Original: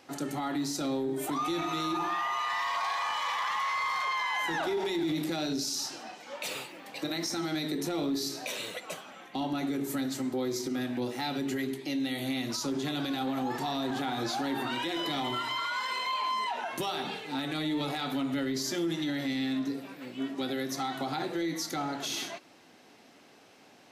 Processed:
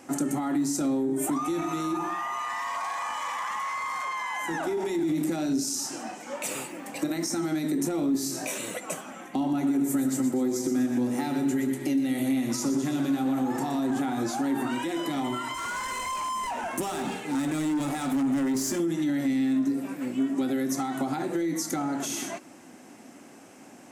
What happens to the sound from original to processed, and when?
8.12–8.58 s: doubling 23 ms -3 dB
9.32–13.80 s: two-band feedback delay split 310 Hz, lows 89 ms, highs 121 ms, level -8 dB
15.54–18.80 s: hard clipper -33 dBFS
whole clip: band-stop 440 Hz, Q 12; compression 4:1, threshold -35 dBFS; graphic EQ 250/4000/8000 Hz +7/-12/+10 dB; trim +6 dB

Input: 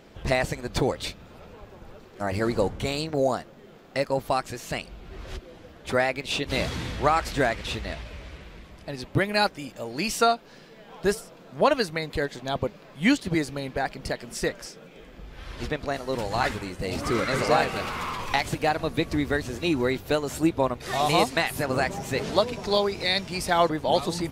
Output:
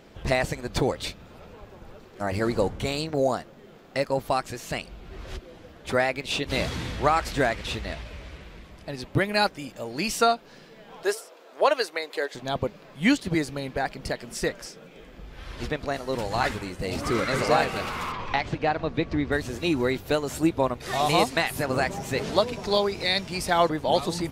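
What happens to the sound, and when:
11.03–12.35 s: high-pass 370 Hz 24 dB/octave
18.12–19.32 s: distance through air 170 m

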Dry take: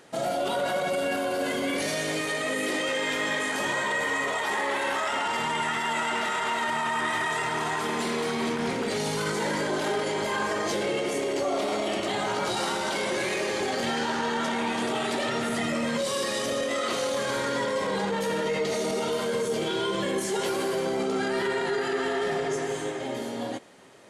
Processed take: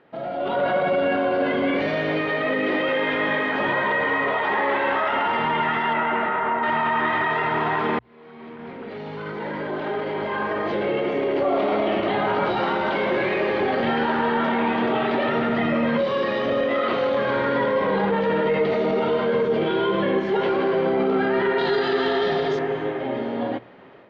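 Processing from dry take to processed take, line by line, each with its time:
5.93–6.62 s: low-pass 3 kHz -> 1.5 kHz
7.99–11.79 s: fade in
21.58–22.59 s: high-order bell 5.6 kHz +16 dB
whole clip: hum notches 60/120 Hz; level rider gain up to 9.5 dB; Bessel low-pass 2.1 kHz, order 6; trim -2.5 dB

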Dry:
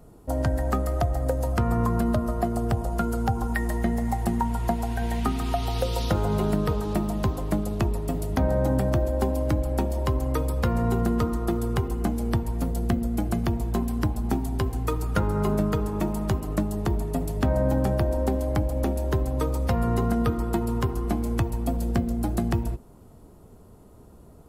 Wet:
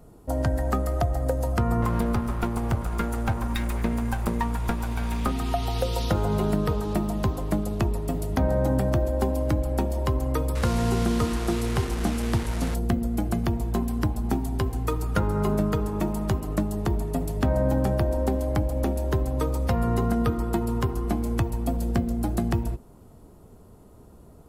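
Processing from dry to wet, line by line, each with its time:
1.82–5.31 s: comb filter that takes the minimum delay 0.83 ms
10.55–12.75 s: one-bit delta coder 64 kbps, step -28 dBFS

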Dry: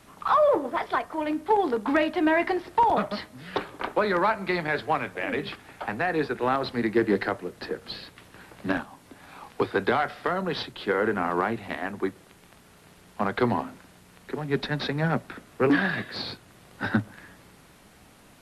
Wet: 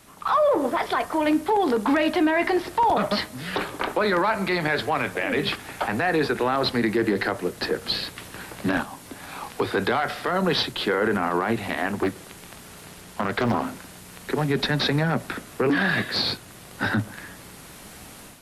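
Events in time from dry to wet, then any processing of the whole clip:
11.88–13.67 s: loudspeaker Doppler distortion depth 0.57 ms
whole clip: level rider gain up to 9.5 dB; treble shelf 4.9 kHz +8 dB; peak limiter -13.5 dBFS

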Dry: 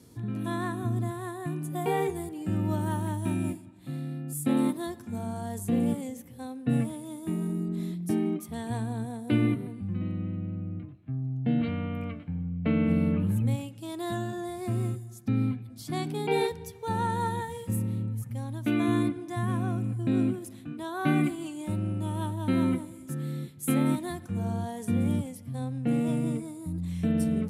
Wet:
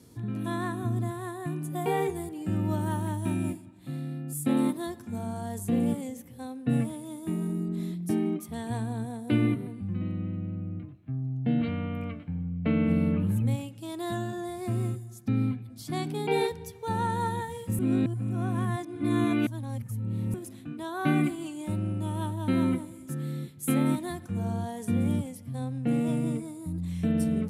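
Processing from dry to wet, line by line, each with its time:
17.79–20.34 s: reverse

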